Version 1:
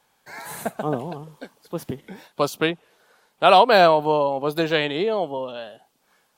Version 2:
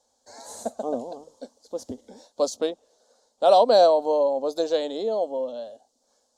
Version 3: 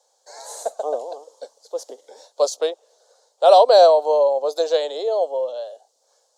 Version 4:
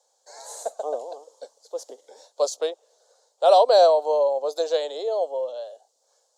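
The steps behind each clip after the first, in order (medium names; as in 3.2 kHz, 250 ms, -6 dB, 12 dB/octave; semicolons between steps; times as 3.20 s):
FFT filter 100 Hz 0 dB, 150 Hz -25 dB, 240 Hz +5 dB, 370 Hz -5 dB, 530 Hz +8 dB, 1.3 kHz -10 dB, 2.5 kHz -18 dB, 4.1 kHz +3 dB, 6.9 kHz +10 dB, 15 kHz -18 dB; trim -5 dB
steep high-pass 410 Hz 36 dB/octave; trim +5 dB
peaking EQ 7.3 kHz +2.5 dB 0.35 oct; trim -4 dB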